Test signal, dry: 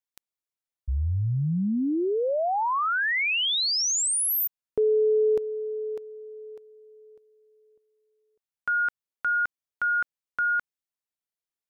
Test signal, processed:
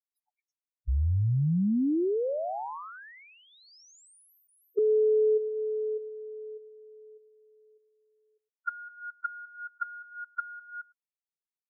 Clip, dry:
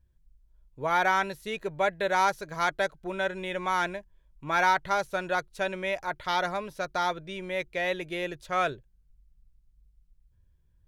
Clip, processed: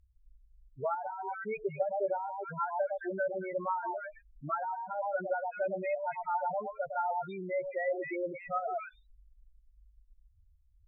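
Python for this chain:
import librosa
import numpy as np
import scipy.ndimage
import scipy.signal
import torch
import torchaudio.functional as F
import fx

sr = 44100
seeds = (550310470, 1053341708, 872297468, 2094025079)

y = fx.echo_stepped(x, sr, ms=108, hz=830.0, octaves=1.4, feedback_pct=70, wet_db=-3.5)
y = fx.spec_topn(y, sr, count=4)
y = fx.env_lowpass_down(y, sr, base_hz=470.0, full_db=-24.5)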